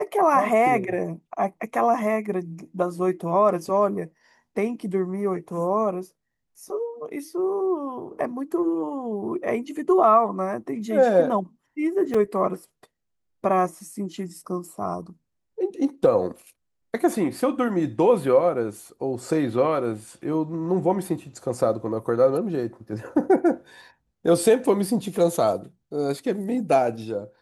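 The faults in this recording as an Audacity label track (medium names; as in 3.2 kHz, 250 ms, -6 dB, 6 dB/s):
12.140000	12.140000	dropout 4.4 ms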